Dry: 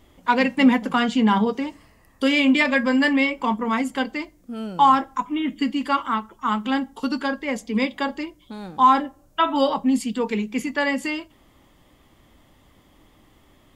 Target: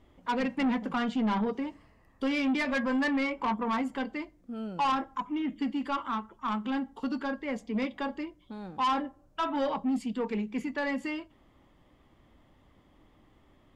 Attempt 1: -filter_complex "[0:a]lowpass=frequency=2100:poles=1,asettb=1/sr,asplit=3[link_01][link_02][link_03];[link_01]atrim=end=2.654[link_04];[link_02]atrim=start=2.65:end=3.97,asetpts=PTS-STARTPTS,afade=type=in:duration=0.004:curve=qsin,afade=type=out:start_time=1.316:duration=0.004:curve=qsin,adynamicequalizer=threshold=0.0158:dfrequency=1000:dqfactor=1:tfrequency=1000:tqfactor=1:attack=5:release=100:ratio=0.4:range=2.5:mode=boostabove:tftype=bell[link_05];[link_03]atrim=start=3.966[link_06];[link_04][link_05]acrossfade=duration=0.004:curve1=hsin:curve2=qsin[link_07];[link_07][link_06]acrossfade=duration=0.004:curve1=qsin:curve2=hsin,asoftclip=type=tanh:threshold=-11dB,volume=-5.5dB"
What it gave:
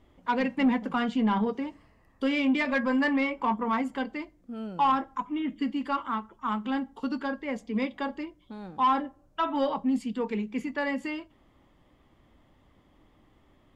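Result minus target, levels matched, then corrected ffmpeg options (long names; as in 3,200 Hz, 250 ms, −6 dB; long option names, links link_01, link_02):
soft clipping: distortion −8 dB
-filter_complex "[0:a]lowpass=frequency=2100:poles=1,asettb=1/sr,asplit=3[link_01][link_02][link_03];[link_01]atrim=end=2.654[link_04];[link_02]atrim=start=2.65:end=3.97,asetpts=PTS-STARTPTS,afade=type=in:duration=0.004:curve=qsin,afade=type=out:start_time=1.316:duration=0.004:curve=qsin,adynamicequalizer=threshold=0.0158:dfrequency=1000:dqfactor=1:tfrequency=1000:tqfactor=1:attack=5:release=100:ratio=0.4:range=2.5:mode=boostabove:tftype=bell[link_05];[link_03]atrim=start=3.966[link_06];[link_04][link_05]acrossfade=duration=0.004:curve1=hsin:curve2=qsin[link_07];[link_07][link_06]acrossfade=duration=0.004:curve1=qsin:curve2=hsin,asoftclip=type=tanh:threshold=-18dB,volume=-5.5dB"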